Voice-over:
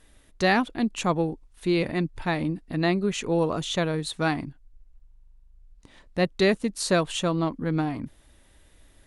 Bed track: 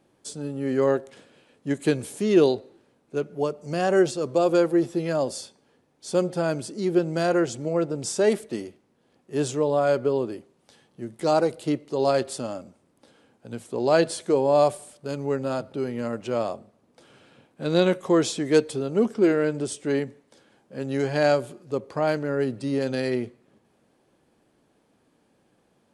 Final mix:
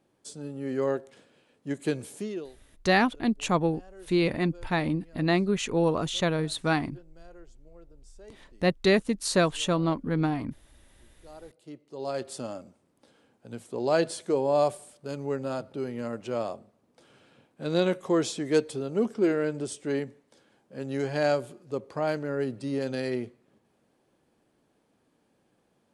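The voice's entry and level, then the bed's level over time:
2.45 s, -0.5 dB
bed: 2.2 s -6 dB
2.53 s -29.5 dB
11.22 s -29.5 dB
12.4 s -4.5 dB

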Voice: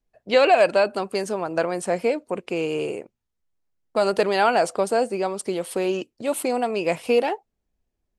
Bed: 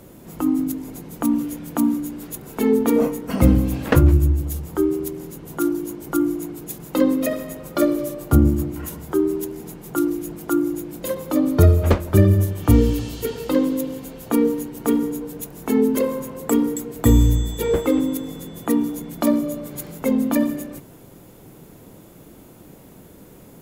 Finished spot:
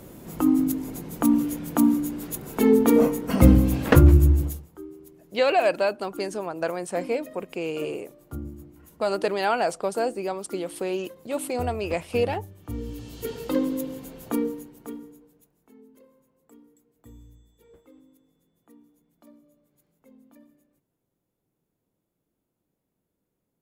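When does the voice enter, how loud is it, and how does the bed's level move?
5.05 s, -4.5 dB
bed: 4.45 s 0 dB
4.71 s -21 dB
12.69 s -21 dB
13.31 s -5.5 dB
14.27 s -5.5 dB
15.76 s -35 dB

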